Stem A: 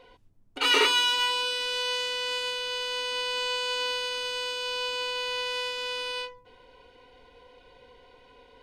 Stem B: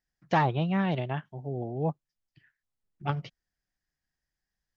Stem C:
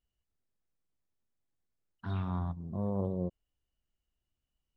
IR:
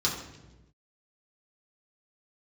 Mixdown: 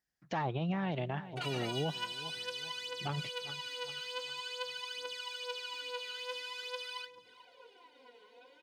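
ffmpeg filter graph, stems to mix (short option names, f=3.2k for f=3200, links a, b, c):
-filter_complex "[0:a]highpass=250,acompressor=threshold=-36dB:ratio=4,aphaser=in_gain=1:out_gain=1:delay=4.8:decay=0.76:speed=0.47:type=triangular,adelay=800,volume=-7.5dB,asplit=2[a][b];[b]volume=-21.5dB[c];[1:a]volume=-0.5dB,asplit=2[d][e];[e]volume=-19.5dB[f];[c][f]amix=inputs=2:normalize=0,aecho=0:1:400|800|1200|1600|2000|2400:1|0.42|0.176|0.0741|0.0311|0.0131[g];[a][d][g]amix=inputs=3:normalize=0,highpass=f=120:p=1,alimiter=level_in=1dB:limit=-24dB:level=0:latency=1:release=86,volume=-1dB"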